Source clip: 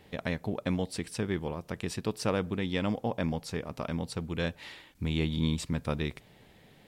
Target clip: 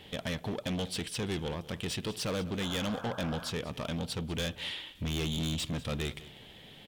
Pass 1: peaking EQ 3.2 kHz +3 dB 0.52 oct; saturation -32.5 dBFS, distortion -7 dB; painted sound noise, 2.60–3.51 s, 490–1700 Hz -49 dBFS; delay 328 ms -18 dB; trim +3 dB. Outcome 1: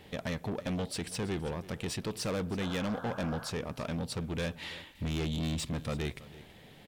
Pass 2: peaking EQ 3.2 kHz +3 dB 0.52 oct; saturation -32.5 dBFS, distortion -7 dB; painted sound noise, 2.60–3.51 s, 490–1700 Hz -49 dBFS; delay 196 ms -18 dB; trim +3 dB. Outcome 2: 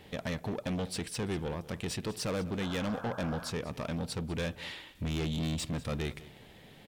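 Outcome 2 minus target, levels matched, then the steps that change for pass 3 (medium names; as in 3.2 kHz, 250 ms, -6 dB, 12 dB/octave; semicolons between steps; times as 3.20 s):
4 kHz band -4.5 dB
change: peaking EQ 3.2 kHz +13 dB 0.52 oct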